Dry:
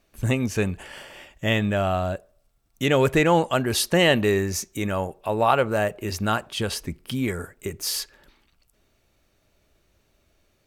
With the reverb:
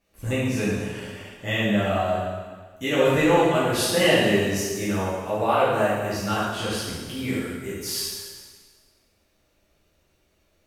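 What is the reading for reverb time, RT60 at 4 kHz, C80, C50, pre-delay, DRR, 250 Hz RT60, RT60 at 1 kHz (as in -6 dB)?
1.6 s, 1.5 s, 1.0 dB, -1.5 dB, 4 ms, -10.0 dB, 1.6 s, 1.6 s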